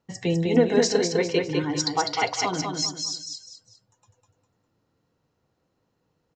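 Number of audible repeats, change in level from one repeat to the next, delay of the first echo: 3, -9.5 dB, 0.202 s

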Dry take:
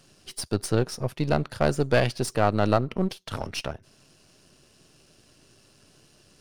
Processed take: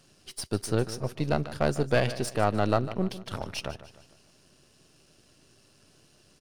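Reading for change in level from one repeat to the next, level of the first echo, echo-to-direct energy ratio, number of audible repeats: -7.0 dB, -14.5 dB, -13.5 dB, 3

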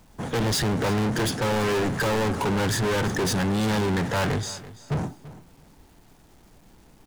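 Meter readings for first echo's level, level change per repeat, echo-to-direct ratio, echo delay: -17.0 dB, -15.0 dB, -17.0 dB, 0.336 s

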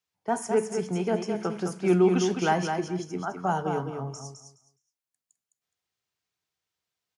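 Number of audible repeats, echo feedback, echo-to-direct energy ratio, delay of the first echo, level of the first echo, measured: 3, 19%, -6.0 dB, 0.209 s, -6.0 dB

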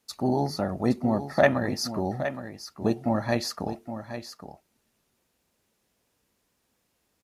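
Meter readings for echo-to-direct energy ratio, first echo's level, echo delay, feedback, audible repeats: -10.5 dB, -10.5 dB, 0.818 s, no steady repeat, 1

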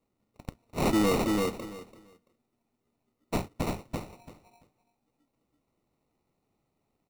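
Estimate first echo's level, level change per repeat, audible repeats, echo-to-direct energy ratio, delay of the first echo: -3.0 dB, -15.0 dB, 3, -3.0 dB, 0.337 s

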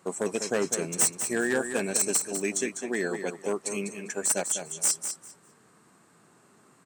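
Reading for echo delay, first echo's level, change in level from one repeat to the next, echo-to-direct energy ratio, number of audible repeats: 0.2 s, -8.5 dB, -15.0 dB, -8.5 dB, 2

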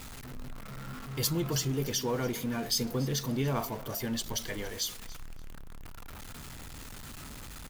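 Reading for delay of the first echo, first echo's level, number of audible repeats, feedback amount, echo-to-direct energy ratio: 0.286 s, -19.0 dB, 2, 19%, -19.0 dB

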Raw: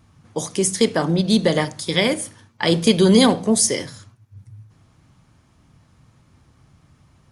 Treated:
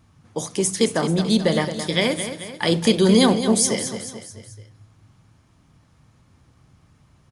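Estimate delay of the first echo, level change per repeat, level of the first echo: 0.218 s, -6.0 dB, -10.0 dB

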